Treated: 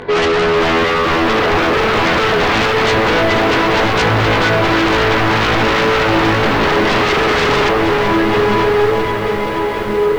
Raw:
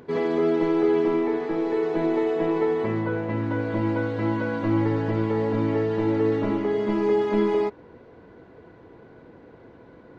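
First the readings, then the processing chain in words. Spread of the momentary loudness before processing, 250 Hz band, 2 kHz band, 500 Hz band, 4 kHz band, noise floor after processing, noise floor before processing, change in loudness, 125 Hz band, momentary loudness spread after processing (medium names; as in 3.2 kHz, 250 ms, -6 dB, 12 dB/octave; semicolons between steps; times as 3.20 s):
4 LU, +6.5 dB, +22.0 dB, +9.5 dB, +28.0 dB, -18 dBFS, -50 dBFS, +11.0 dB, +9.5 dB, 2 LU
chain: graphic EQ 125/250/500/1000/2000/4000 Hz -9/-10/+6/+4/+7/+10 dB; hard clipper -17.5 dBFS, distortion -17 dB; on a send: echo that smears into a reverb 1185 ms, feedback 40%, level -4 dB; on the sum: chorus voices 2, 0.24 Hz, delay 20 ms, depth 5 ms; tone controls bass +10 dB, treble -9 dB; in parallel at -5 dB: sine folder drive 19 dB, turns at -7 dBFS; on the sum: bit-crushed delay 474 ms, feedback 80%, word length 6-bit, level -11 dB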